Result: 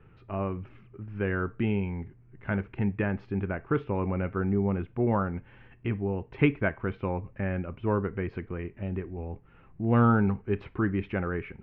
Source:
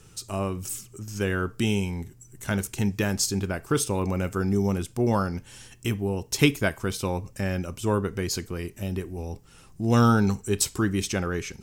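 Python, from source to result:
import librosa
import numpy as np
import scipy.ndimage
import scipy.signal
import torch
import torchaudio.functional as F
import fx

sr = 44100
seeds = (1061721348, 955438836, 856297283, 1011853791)

y = scipy.signal.sosfilt(scipy.signal.butter(6, 2400.0, 'lowpass', fs=sr, output='sos'), x)
y = y * 10.0 ** (-2.5 / 20.0)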